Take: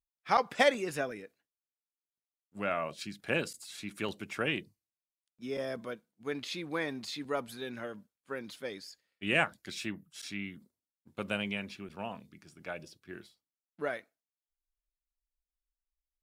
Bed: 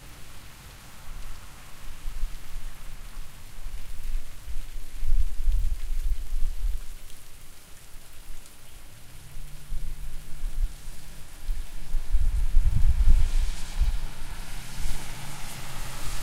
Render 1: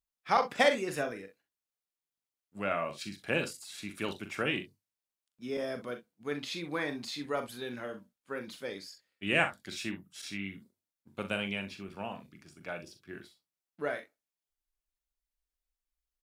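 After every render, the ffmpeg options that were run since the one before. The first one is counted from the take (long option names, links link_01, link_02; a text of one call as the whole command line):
ffmpeg -i in.wav -af "aecho=1:1:41|63:0.376|0.2" out.wav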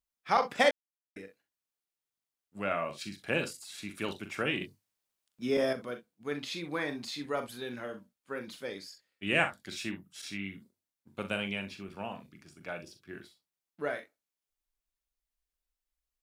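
ffmpeg -i in.wav -filter_complex "[0:a]asettb=1/sr,asplit=3[link_01][link_02][link_03];[link_01]atrim=end=4.614[link_04];[link_02]atrim=start=4.61:end=5.73,asetpts=PTS-STARTPTS,afade=type=in:duration=0.004:curve=qsin,afade=type=out:start_time=1.116:duration=0.004:curve=qsin,acontrast=71[link_05];[link_03]atrim=start=5.726[link_06];[link_04][link_05]acrossfade=duration=0.004:curve1=hsin:curve2=qsin[link_07];[link_07][link_06]acrossfade=duration=0.004:curve1=qsin:curve2=hsin,asplit=3[link_08][link_09][link_10];[link_08]atrim=end=0.71,asetpts=PTS-STARTPTS,afade=type=out:start_time=0.706:duration=0.004:curve=hsin[link_11];[link_09]atrim=start=0.71:end=1.16,asetpts=PTS-STARTPTS,volume=0[link_12];[link_10]atrim=start=1.16,asetpts=PTS-STARTPTS,afade=type=in:duration=0.004:curve=hsin[link_13];[link_11][link_12][link_13]concat=n=3:v=0:a=1" out.wav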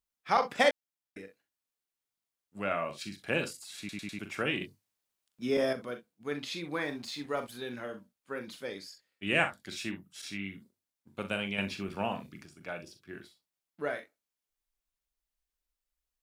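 ffmpeg -i in.wav -filter_complex "[0:a]asettb=1/sr,asplit=3[link_01][link_02][link_03];[link_01]atrim=end=6.824[link_04];[link_02]atrim=start=6.82:end=7.55,asetpts=PTS-STARTPTS,afade=type=in:duration=0.004:curve=qsin,afade=type=out:start_time=0.726:duration=0.004:curve=qsin,aeval=exprs='sgn(val(0))*max(abs(val(0))-0.00112,0)':channel_layout=same[link_05];[link_03]atrim=start=7.546[link_06];[link_04][link_05]acrossfade=duration=0.004:curve1=hsin:curve2=qsin[link_07];[link_07][link_06]acrossfade=duration=0.004:curve1=qsin:curve2=hsin,asettb=1/sr,asplit=3[link_08][link_09][link_10];[link_08]atrim=end=11.584[link_11];[link_09]atrim=start=11.58:end=12.46,asetpts=PTS-STARTPTS,afade=type=in:duration=0.004:curve=qsin,afade=type=out:start_time=0.876:duration=0.004:curve=qsin,acontrast=63[link_12];[link_10]atrim=start=12.456[link_13];[link_11][link_12]acrossfade=duration=0.004:curve1=hsin:curve2=qsin[link_14];[link_14][link_13]acrossfade=duration=0.004:curve1=qsin:curve2=hsin,asplit=5[link_15][link_16][link_17][link_18][link_19];[link_15]atrim=end=3.892[link_20];[link_16]atrim=start=3.788:end=3.892[link_21];[link_17]atrim=start=3.788:end=3.892[link_22];[link_18]atrim=start=3.788:end=3.892[link_23];[link_19]atrim=start=4.188[link_24];[link_20][link_21]acrossfade=duration=0.004:curve1=hsin:curve2=hsin[link_25];[link_25][link_22]acrossfade=duration=0.004:curve1=hsin:curve2=hsin[link_26];[link_26][link_23]acrossfade=duration=0.004:curve1=hsin:curve2=hsin[link_27];[link_27][link_24]acrossfade=duration=0.004:curve1=hsin:curve2=hsin" out.wav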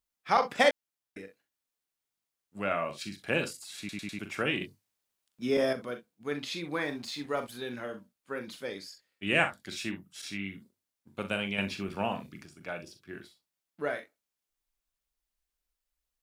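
ffmpeg -i in.wav -af "volume=1.5dB" out.wav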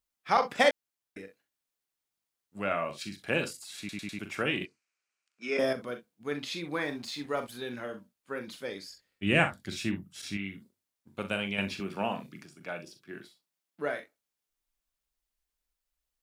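ffmpeg -i in.wav -filter_complex "[0:a]asettb=1/sr,asplit=3[link_01][link_02][link_03];[link_01]atrim=end=4.654[link_04];[link_02]atrim=start=4.65:end=5.59,asetpts=PTS-STARTPTS,afade=type=in:duration=0.004:curve=qsin,afade=type=out:start_time=0.936:duration=0.004:curve=qsin,highpass=430,equalizer=frequency=560:width_type=q:width=4:gain=-5,equalizer=frequency=890:width_type=q:width=4:gain=-6,equalizer=frequency=1400:width_type=q:width=4:gain=6,equalizer=frequency=2400:width_type=q:width=4:gain=10,equalizer=frequency=3500:width_type=q:width=4:gain=-8,lowpass=frequency=7700:width=0.5412,lowpass=frequency=7700:width=1.3066[link_05];[link_03]atrim=start=5.586[link_06];[link_04][link_05]acrossfade=duration=0.004:curve1=hsin:curve2=qsin[link_07];[link_07][link_06]acrossfade=duration=0.004:curve1=qsin:curve2=hsin,asettb=1/sr,asplit=3[link_08][link_09][link_10];[link_08]atrim=end=8.894[link_11];[link_09]atrim=start=8.89:end=10.37,asetpts=PTS-STARTPTS,afade=type=in:duration=0.004:curve=qsin,afade=type=out:start_time=1.476:duration=0.004:curve=qsin,lowshelf=frequency=230:gain=11[link_12];[link_10]atrim=start=10.366[link_13];[link_11][link_12]acrossfade=duration=0.004:curve1=hsin:curve2=qsin[link_14];[link_14][link_13]acrossfade=duration=0.004:curve1=qsin:curve2=hsin,asettb=1/sr,asplit=3[link_15][link_16][link_17];[link_15]atrim=end=11.804[link_18];[link_16]atrim=start=11.8:end=14,asetpts=PTS-STARTPTS,afade=type=in:duration=0.004:curve=qsin,afade=type=out:start_time=2.196:duration=0.004:curve=qsin,highpass=frequency=120:width=0.5412,highpass=frequency=120:width=1.3066[link_19];[link_17]atrim=start=13.996[link_20];[link_18][link_19]acrossfade=duration=0.004:curve1=hsin:curve2=qsin[link_21];[link_21][link_20]acrossfade=duration=0.004:curve1=qsin:curve2=hsin" out.wav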